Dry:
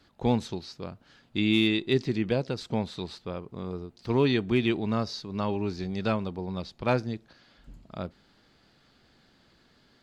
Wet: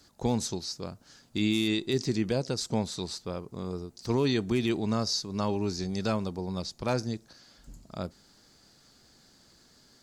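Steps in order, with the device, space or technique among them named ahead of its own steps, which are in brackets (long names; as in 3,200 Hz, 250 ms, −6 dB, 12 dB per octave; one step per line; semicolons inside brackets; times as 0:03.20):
over-bright horn tweeter (high shelf with overshoot 4,400 Hz +12 dB, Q 1.5; brickwall limiter −17 dBFS, peak gain reduction 5 dB)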